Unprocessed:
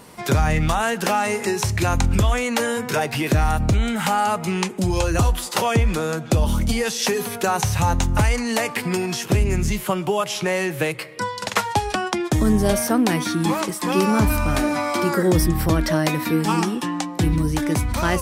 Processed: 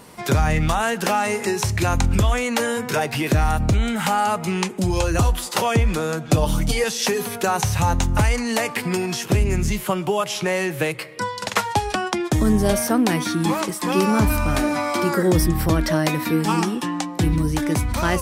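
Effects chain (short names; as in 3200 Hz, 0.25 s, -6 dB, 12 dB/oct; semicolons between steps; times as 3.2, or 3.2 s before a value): 6.28–6.84 comb 6.7 ms, depth 77%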